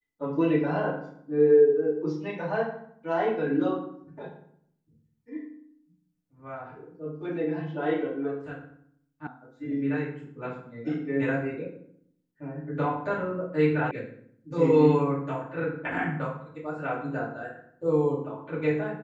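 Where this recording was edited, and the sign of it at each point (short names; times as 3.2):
9.27 sound cut off
13.91 sound cut off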